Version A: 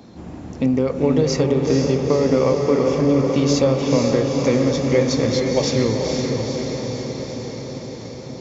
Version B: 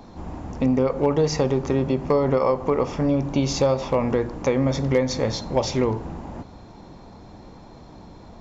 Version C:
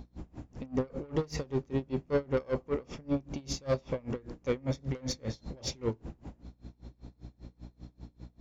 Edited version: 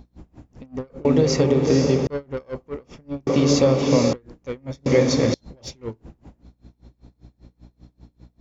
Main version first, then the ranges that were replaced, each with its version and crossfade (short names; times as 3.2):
C
1.05–2.07 from A
3.27–4.13 from A
4.86–5.34 from A
not used: B